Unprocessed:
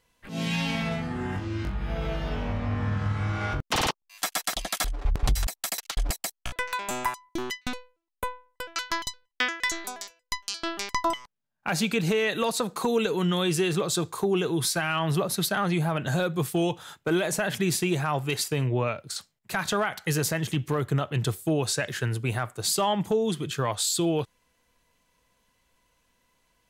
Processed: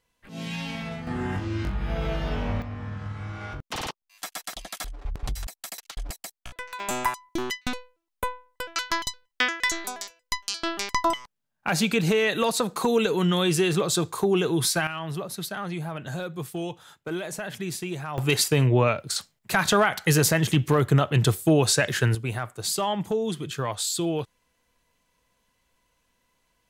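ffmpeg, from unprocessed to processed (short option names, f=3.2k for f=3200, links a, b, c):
-af "asetnsamples=n=441:p=0,asendcmd='1.07 volume volume 2dB;2.62 volume volume -7dB;6.8 volume volume 2.5dB;14.87 volume volume -6.5dB;18.18 volume volume 6dB;22.15 volume volume -1.5dB',volume=-5dB"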